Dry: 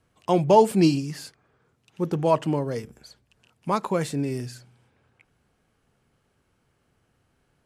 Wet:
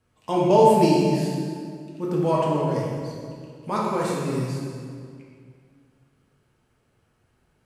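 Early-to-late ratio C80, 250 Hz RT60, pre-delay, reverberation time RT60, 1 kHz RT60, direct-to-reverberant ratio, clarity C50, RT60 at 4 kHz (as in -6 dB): 1.0 dB, 2.5 s, 3 ms, 2.1 s, 2.0 s, -5.0 dB, -1.0 dB, 1.6 s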